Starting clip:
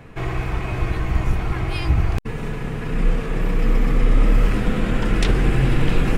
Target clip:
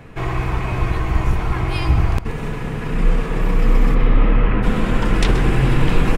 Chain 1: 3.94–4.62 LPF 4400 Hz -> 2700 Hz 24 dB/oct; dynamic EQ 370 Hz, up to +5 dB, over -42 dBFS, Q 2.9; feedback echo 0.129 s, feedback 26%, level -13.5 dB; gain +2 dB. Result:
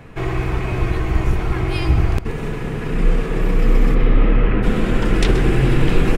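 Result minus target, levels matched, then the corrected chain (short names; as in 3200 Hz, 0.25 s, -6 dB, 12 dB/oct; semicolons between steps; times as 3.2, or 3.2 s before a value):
1000 Hz band -3.0 dB
3.94–4.62 LPF 4400 Hz -> 2700 Hz 24 dB/oct; dynamic EQ 990 Hz, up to +5 dB, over -42 dBFS, Q 2.9; feedback echo 0.129 s, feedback 26%, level -13.5 dB; gain +2 dB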